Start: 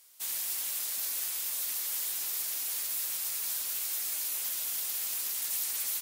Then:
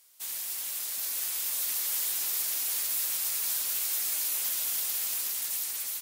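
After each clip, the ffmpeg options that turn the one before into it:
-af "dynaudnorm=f=470:g=5:m=1.78,volume=0.841"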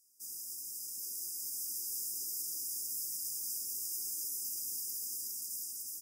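-af "highshelf=f=11000:g=-7,afftfilt=real='re*(1-between(b*sr/4096,410,4800))':imag='im*(1-between(b*sr/4096,410,4800))':win_size=4096:overlap=0.75,volume=0.596"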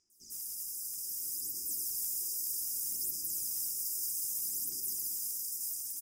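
-filter_complex "[0:a]acrossover=split=5800[s0][s1];[s1]adelay=100[s2];[s0][s2]amix=inputs=2:normalize=0,aphaser=in_gain=1:out_gain=1:delay=1.9:decay=0.49:speed=0.63:type=sinusoidal,volume=1.33"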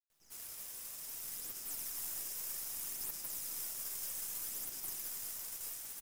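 -af "aeval=exprs='0.0794*(cos(1*acos(clip(val(0)/0.0794,-1,1)))-cos(1*PI/2))+0.00891*(cos(4*acos(clip(val(0)/0.0794,-1,1)))-cos(4*PI/2))+0.00316*(cos(7*acos(clip(val(0)/0.0794,-1,1)))-cos(7*PI/2))':c=same,acrusher=bits=8:dc=4:mix=0:aa=0.000001,volume=0.531"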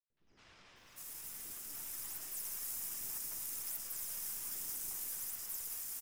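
-filter_complex "[0:a]acrossover=split=530|4000[s0][s1][s2];[s1]adelay=70[s3];[s2]adelay=660[s4];[s0][s3][s4]amix=inputs=3:normalize=0"

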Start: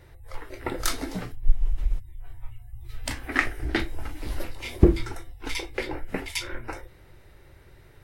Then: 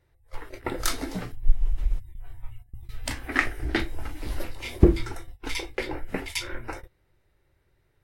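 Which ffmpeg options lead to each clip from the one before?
-af "agate=range=0.158:threshold=0.0126:ratio=16:detection=peak"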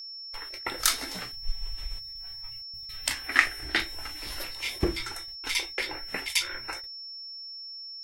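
-af "agate=range=0.0224:threshold=0.0178:ratio=3:detection=peak,tiltshelf=f=760:g=-9.5,aeval=exprs='val(0)+0.0178*sin(2*PI*5400*n/s)':c=same,volume=0.668"

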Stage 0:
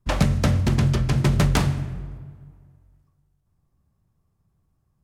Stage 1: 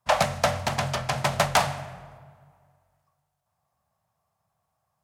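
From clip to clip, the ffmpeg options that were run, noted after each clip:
-af "highpass=100,lowshelf=f=480:t=q:w=3:g=-12,volume=1.33"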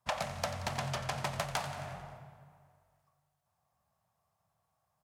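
-af "acompressor=threshold=0.0316:ratio=5,aecho=1:1:89|178|267|356|445|534:0.224|0.132|0.0779|0.046|0.0271|0.016,volume=0.708"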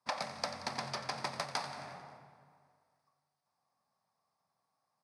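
-af "highpass=250,equalizer=f=260:t=q:w=4:g=6,equalizer=f=650:t=q:w=4:g=-6,equalizer=f=1500:t=q:w=4:g=-3,equalizer=f=3000:t=q:w=4:g=-10,equalizer=f=4800:t=q:w=4:g=7,equalizer=f=7200:t=q:w=4:g=-10,lowpass=f=9600:w=0.5412,lowpass=f=9600:w=1.3066"

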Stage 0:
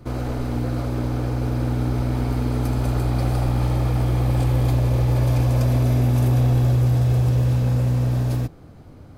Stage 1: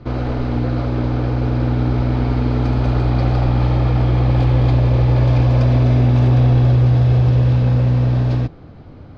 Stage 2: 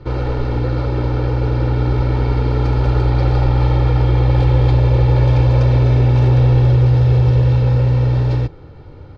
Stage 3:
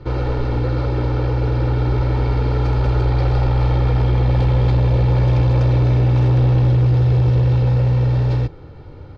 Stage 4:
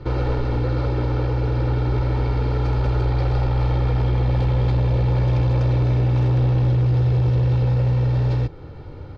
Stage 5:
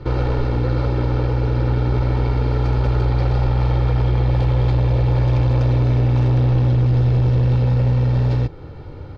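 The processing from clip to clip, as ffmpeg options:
-af "lowpass=f=4500:w=0.5412,lowpass=f=4500:w=1.3066,volume=1.78"
-af "aecho=1:1:2.2:0.6"
-af "asoftclip=type=tanh:threshold=0.355"
-af "alimiter=limit=0.188:level=0:latency=1:release=214,volume=1.12"
-af "aeval=exprs='0.211*(cos(1*acos(clip(val(0)/0.211,-1,1)))-cos(1*PI/2))+0.0237*(cos(2*acos(clip(val(0)/0.211,-1,1)))-cos(2*PI/2))':c=same,volume=1.26"

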